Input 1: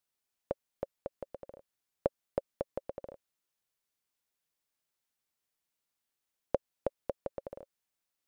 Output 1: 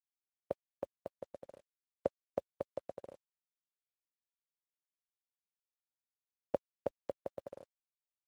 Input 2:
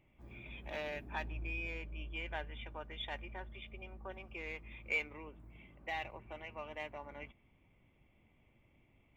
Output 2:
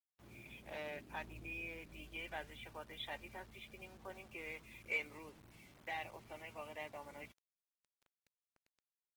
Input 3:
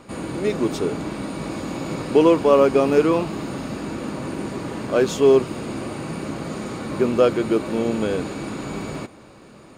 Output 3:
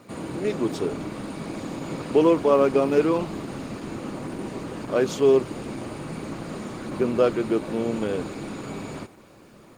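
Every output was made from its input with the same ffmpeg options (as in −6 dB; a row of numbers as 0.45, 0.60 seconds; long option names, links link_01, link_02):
-af "highpass=frequency=74:width=0.5412,highpass=frequency=74:width=1.3066,acrusher=bits=9:mix=0:aa=0.000001,volume=-3dB" -ar 48000 -c:a libopus -b:a 16k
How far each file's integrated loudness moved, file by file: −3.5, −4.0, −3.5 LU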